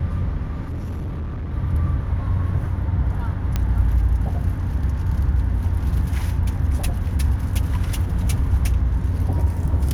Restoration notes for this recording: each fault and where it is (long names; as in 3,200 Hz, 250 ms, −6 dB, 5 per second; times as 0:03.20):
0:00.64–0:01.54: clipping −24.5 dBFS
0:03.56: click −9 dBFS